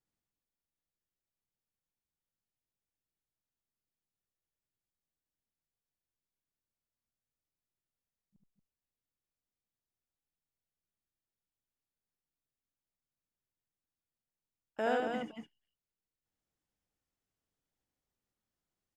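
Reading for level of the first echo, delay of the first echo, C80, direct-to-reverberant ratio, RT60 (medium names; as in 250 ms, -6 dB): -3.0 dB, 74 ms, no reverb, no reverb, no reverb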